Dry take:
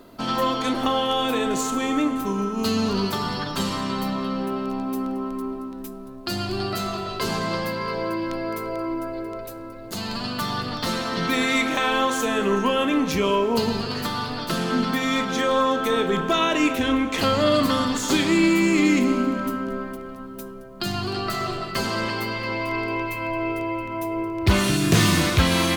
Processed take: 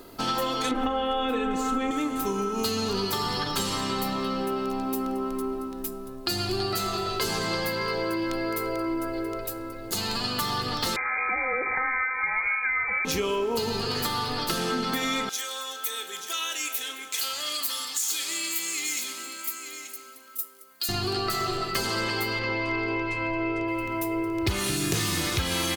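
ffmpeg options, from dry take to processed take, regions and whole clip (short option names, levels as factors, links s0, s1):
-filter_complex "[0:a]asettb=1/sr,asplit=3[s0][s1][s2];[s0]atrim=end=0.714[s3];[s1]atrim=start=0.71:end=1.91,asetpts=PTS-STARTPTS,afade=t=in:d=0.004:c=qsin,afade=t=out:st=1.196:d=0.004:c=qsin,bass=f=250:g=6,treble=f=4000:g=-15,aecho=1:1:3.9:0.91,atrim=end_sample=52920[s4];[s2]atrim=start=1.906[s5];[s3][s4]acrossfade=d=0.004:c1=hsin:c2=qsin[s6];[s6][s5]acrossfade=d=0.004:c1=qsin:c2=hsin,asettb=1/sr,asplit=3[s7][s8][s9];[s7]atrim=end=10.964[s10];[s8]atrim=start=10.96:end=13.05,asetpts=PTS-STARTPTS,afade=t=in:d=0.004:c=qsin,afade=t=out:st=2.086:d=0.004:c=qsin,highpass=f=210:w=0.5412,highpass=f=210:w=1.3066,lowpass=f=2200:t=q:w=0.5098,lowpass=f=2200:t=q:w=0.6013,lowpass=f=2200:t=q:w=0.9,lowpass=f=2200:t=q:w=2.563,afreqshift=-2600[s11];[s9]atrim=start=13.046[s12];[s10][s11]acrossfade=d=0.004:c1=hsin:c2=qsin[s13];[s13][s12]acrossfade=d=0.004:c1=qsin:c2=hsin,asettb=1/sr,asplit=3[s14][s15][s16];[s14]atrim=end=15.294[s17];[s15]atrim=start=15.29:end=20.89,asetpts=PTS-STARTPTS,afade=t=in:d=0.004:c=qsin,afade=t=out:st=5.596:d=0.004:c=qsin,aderivative,aecho=1:1:883:0.316,atrim=end_sample=246960[s18];[s16]atrim=start=20.886[s19];[s17][s18]acrossfade=d=0.004:c1=hsin:c2=qsin[s20];[s20][s19]acrossfade=d=0.004:c1=qsin:c2=hsin,asettb=1/sr,asplit=3[s21][s22][s23];[s21]atrim=end=22.394[s24];[s22]atrim=start=22.39:end=23.68,asetpts=PTS-STARTPTS,afade=t=in:d=0.004:c=qsin,afade=t=out:st=1.286:d=0.004:c=qsin,lowpass=f=7400:w=0.5412,lowpass=f=7400:w=1.3066,aemphasis=mode=reproduction:type=cd[s25];[s23]atrim=start=23.676[s26];[s24][s25]acrossfade=d=0.004:c1=hsin:c2=qsin[s27];[s27][s26]acrossfade=d=0.004:c1=qsin:c2=hsin,highshelf=f=4400:g=8.5,aecho=1:1:2.4:0.38,acompressor=threshold=0.0631:ratio=6"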